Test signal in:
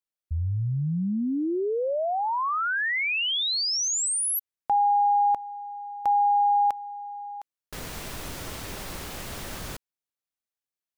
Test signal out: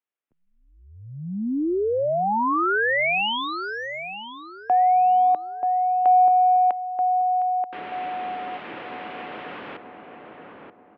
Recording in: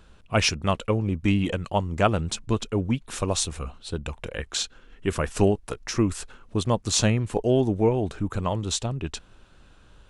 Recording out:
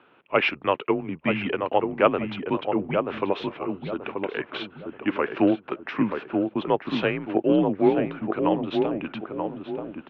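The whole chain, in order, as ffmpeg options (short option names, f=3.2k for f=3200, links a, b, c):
-filter_complex "[0:a]acontrast=31,highpass=f=320:t=q:w=0.5412,highpass=f=320:t=q:w=1.307,lowpass=f=3k:t=q:w=0.5176,lowpass=f=3k:t=q:w=0.7071,lowpass=f=3k:t=q:w=1.932,afreqshift=-83,asplit=2[a][b];[b]adelay=932,lowpass=f=1.1k:p=1,volume=-4dB,asplit=2[c][d];[d]adelay=932,lowpass=f=1.1k:p=1,volume=0.38,asplit=2[e][f];[f]adelay=932,lowpass=f=1.1k:p=1,volume=0.38,asplit=2[g][h];[h]adelay=932,lowpass=f=1.1k:p=1,volume=0.38,asplit=2[i][j];[j]adelay=932,lowpass=f=1.1k:p=1,volume=0.38[k];[a][c][e][g][i][k]amix=inputs=6:normalize=0,volume=-1.5dB"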